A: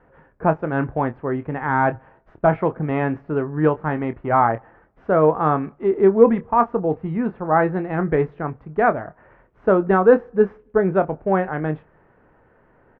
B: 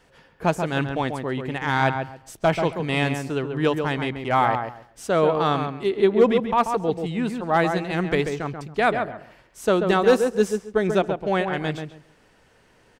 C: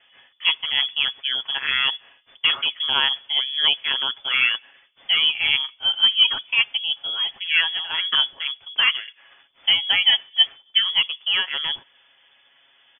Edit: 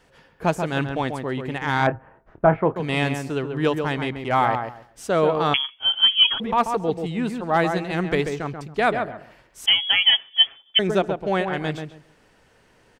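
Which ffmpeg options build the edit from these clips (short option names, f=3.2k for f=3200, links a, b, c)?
-filter_complex "[2:a]asplit=2[a][b];[1:a]asplit=4[c][d][e][f];[c]atrim=end=1.872[g];[0:a]atrim=start=1.868:end=2.762[h];[d]atrim=start=2.758:end=5.542[i];[a]atrim=start=5.538:end=6.402[j];[e]atrim=start=6.398:end=9.662[k];[b]atrim=start=9.658:end=10.792[l];[f]atrim=start=10.788[m];[g][h]acrossfade=d=0.004:c1=hsin:c2=hsin[n];[n][i]acrossfade=d=0.004:c1=hsin:c2=hsin[o];[o][j]acrossfade=d=0.004:c1=hsin:c2=hsin[p];[p][k]acrossfade=d=0.004:c1=hsin:c2=hsin[q];[q][l]acrossfade=d=0.004:c1=hsin:c2=hsin[r];[r][m]acrossfade=d=0.004:c1=hsin:c2=hsin"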